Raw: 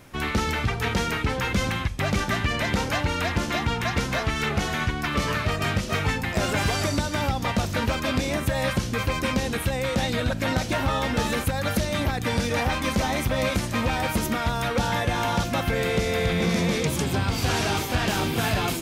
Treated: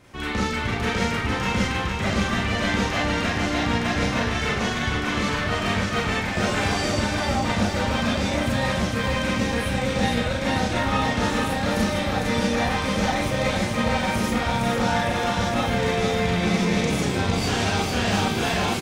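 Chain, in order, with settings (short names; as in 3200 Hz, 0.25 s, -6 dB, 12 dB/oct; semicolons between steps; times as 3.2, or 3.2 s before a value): bell 13000 Hz -13 dB 0.51 oct; feedback echo 0.457 s, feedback 59%, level -5.5 dB; Schroeder reverb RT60 0.32 s, combs from 30 ms, DRR -3.5 dB; added harmonics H 3 -22 dB, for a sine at -4 dBFS; gain -2.5 dB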